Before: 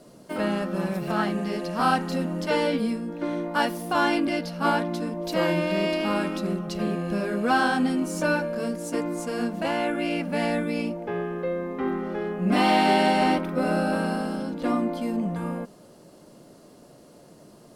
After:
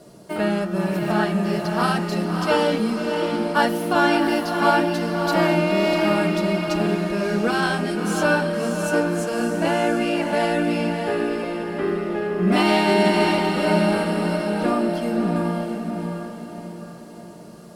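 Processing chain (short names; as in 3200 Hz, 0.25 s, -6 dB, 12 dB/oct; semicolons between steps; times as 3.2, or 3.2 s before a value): notch comb 260 Hz; diffused feedback echo 0.621 s, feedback 44%, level -4.5 dB; gain +5 dB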